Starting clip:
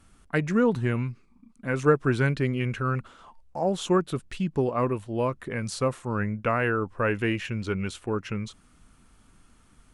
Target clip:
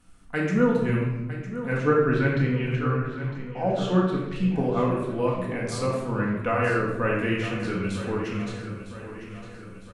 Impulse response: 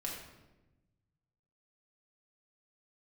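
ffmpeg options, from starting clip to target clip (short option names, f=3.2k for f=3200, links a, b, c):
-filter_complex "[0:a]asettb=1/sr,asplit=3[a][b][c];[a]atrim=end=1.774[d];[b]atrim=start=1.77:end=4.36,asetpts=PTS-STARTPTS,afade=t=in:d=0.004:c=qsin,afade=t=out:st=2.586:d=0.004:c=qsin,lowpass=4.4k[e];[c]atrim=start=4.356[f];[d][e]acrossfade=d=0.004:c1=hsin:c2=qsin[g];[g][f]acrossfade=d=0.004:c1=qsin:c2=hsin,aecho=1:1:956|1912|2868|3824|4780:0.237|0.123|0.0641|0.0333|0.0173[h];[1:a]atrim=start_sample=2205[i];[h][i]afir=irnorm=-1:irlink=0"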